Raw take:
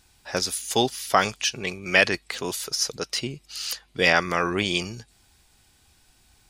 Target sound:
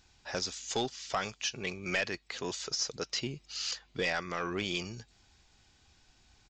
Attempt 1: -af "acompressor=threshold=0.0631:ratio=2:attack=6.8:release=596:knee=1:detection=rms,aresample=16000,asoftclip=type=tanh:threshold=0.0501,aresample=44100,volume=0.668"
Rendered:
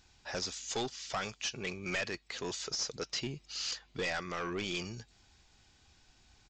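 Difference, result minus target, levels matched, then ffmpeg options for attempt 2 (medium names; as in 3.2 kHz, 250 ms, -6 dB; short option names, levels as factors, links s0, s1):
saturation: distortion +6 dB
-af "acompressor=threshold=0.0631:ratio=2:attack=6.8:release=596:knee=1:detection=rms,aresample=16000,asoftclip=type=tanh:threshold=0.119,aresample=44100,volume=0.668"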